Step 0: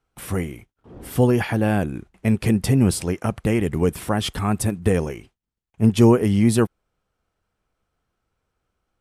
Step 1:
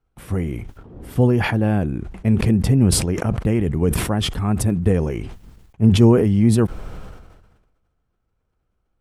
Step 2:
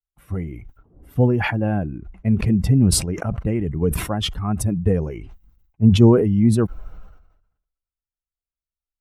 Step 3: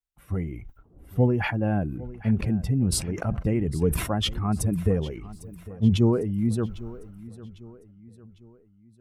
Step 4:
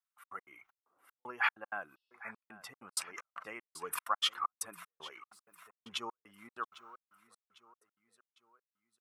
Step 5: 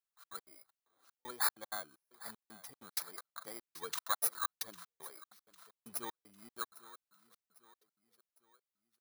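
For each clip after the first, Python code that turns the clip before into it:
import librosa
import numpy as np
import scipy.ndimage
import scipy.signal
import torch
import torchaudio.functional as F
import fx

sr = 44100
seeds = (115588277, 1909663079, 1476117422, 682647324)

y1 = fx.tilt_eq(x, sr, slope=-2.0)
y1 = fx.sustainer(y1, sr, db_per_s=45.0)
y1 = y1 * librosa.db_to_amplitude(-3.5)
y2 = fx.bin_expand(y1, sr, power=1.5)
y2 = y2 * librosa.db_to_amplitude(1.5)
y3 = fx.rider(y2, sr, range_db=4, speed_s=0.5)
y3 = fx.echo_feedback(y3, sr, ms=802, feedback_pct=45, wet_db=-18)
y3 = y3 * librosa.db_to_amplitude(-6.0)
y4 = fx.step_gate(y3, sr, bpm=192, pattern='xxx.x.xxx..xxx..', floor_db=-60.0, edge_ms=4.5)
y4 = fx.highpass_res(y4, sr, hz=1200.0, q=4.1)
y4 = fx.spec_repair(y4, sr, seeds[0], start_s=1.98, length_s=0.35, low_hz=2600.0, high_hz=5700.0, source='before')
y4 = y4 * librosa.db_to_amplitude(-4.5)
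y5 = fx.bit_reversed(y4, sr, seeds[1], block=16)
y5 = y5 * librosa.db_to_amplitude(-1.5)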